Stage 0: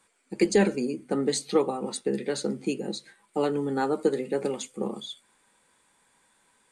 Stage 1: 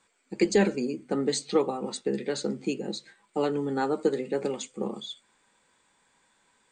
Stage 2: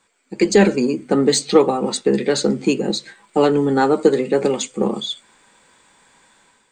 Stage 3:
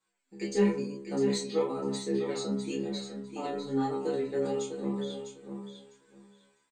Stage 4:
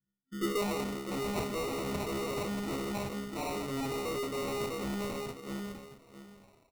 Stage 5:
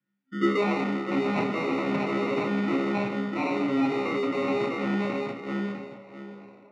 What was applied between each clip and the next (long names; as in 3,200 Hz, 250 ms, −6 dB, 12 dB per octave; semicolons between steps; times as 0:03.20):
elliptic low-pass filter 8,100 Hz, stop band 40 dB
automatic gain control gain up to 8.5 dB; in parallel at −11 dB: soft clipping −21 dBFS, distortion −7 dB; on the sum: level +2.5 dB
stiff-string resonator 66 Hz, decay 0.69 s, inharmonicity 0.002; chorus effect 1 Hz, delay 20 ms, depth 5 ms; repeating echo 652 ms, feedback 18%, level −8 dB; level −2.5 dB
tube saturation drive 39 dB, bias 0.45; low-pass filter sweep 160 Hz → 7,100 Hz, 0:00.24–0:01.26; decimation without filtering 27×; level +6 dB
band-pass filter 180–2,700 Hz; feedback echo with a band-pass in the loop 823 ms, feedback 53%, band-pass 620 Hz, level −17.5 dB; convolution reverb RT60 1.2 s, pre-delay 3 ms, DRR 5.5 dB; level +6.5 dB